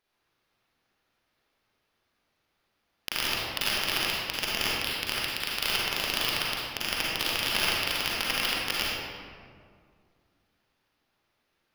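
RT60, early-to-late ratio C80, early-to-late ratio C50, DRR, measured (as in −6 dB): 2.1 s, −1.5 dB, −4.5 dB, −6.0 dB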